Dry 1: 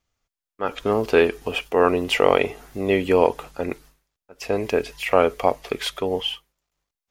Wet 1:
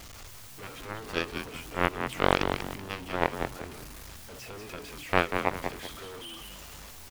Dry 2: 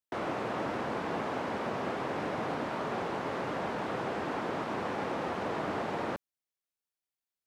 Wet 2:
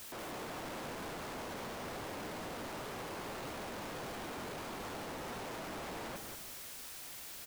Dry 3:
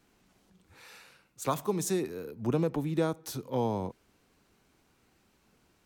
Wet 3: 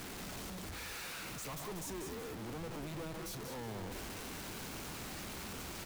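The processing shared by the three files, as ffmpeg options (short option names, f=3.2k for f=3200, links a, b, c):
-filter_complex "[0:a]aeval=exprs='val(0)+0.5*0.119*sgn(val(0))':c=same,aeval=exprs='1*(cos(1*acos(clip(val(0)/1,-1,1)))-cos(1*PI/2))+0.355*(cos(3*acos(clip(val(0)/1,-1,1)))-cos(3*PI/2))+0.00794*(cos(7*acos(clip(val(0)/1,-1,1)))-cos(7*PI/2))':c=same,asplit=2[a][b];[b]asplit=4[c][d][e][f];[c]adelay=190,afreqshift=-130,volume=-6dB[g];[d]adelay=380,afreqshift=-260,volume=-14.9dB[h];[e]adelay=570,afreqshift=-390,volume=-23.7dB[i];[f]adelay=760,afreqshift=-520,volume=-32.6dB[j];[g][h][i][j]amix=inputs=4:normalize=0[k];[a][k]amix=inputs=2:normalize=0,volume=-2.5dB"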